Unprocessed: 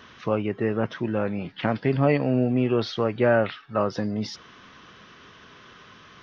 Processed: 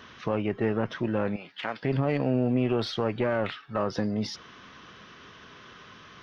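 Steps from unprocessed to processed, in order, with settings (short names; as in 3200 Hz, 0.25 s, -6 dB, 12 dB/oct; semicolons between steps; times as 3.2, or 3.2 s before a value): one diode to ground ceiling -18 dBFS; 1.36–1.83 HPF 1300 Hz 6 dB/oct; limiter -15 dBFS, peak gain reduction 7.5 dB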